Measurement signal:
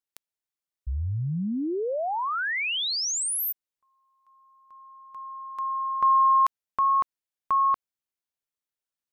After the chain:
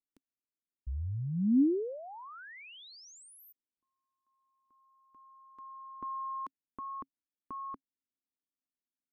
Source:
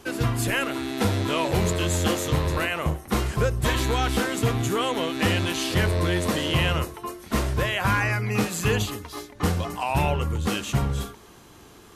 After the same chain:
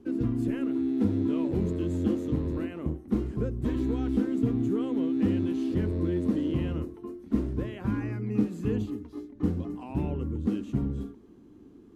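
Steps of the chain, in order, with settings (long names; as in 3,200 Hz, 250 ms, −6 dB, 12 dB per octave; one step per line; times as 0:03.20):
drawn EQ curve 150 Hz 0 dB, 270 Hz +13 dB, 640 Hz −10 dB, 12,000 Hz −22 dB
level −7 dB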